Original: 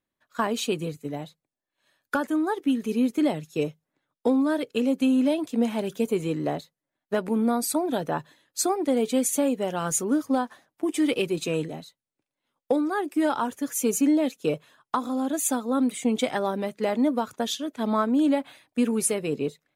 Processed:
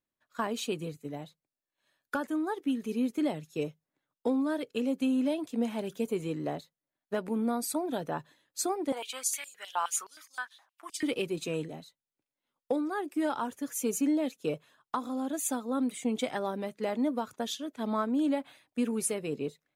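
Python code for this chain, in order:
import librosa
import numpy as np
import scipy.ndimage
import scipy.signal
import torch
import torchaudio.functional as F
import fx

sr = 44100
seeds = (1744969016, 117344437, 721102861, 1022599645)

y = fx.filter_held_highpass(x, sr, hz=9.6, low_hz=940.0, high_hz=6200.0, at=(8.92, 11.03))
y = y * librosa.db_to_amplitude(-6.5)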